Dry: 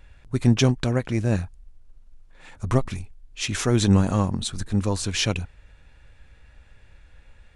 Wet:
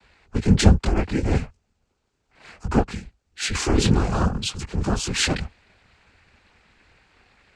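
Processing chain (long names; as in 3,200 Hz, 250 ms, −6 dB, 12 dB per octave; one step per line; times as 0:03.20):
chorus effect 0.64 Hz, delay 17.5 ms, depth 6 ms
cochlear-implant simulation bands 8
frequency shifter −78 Hz
level +6 dB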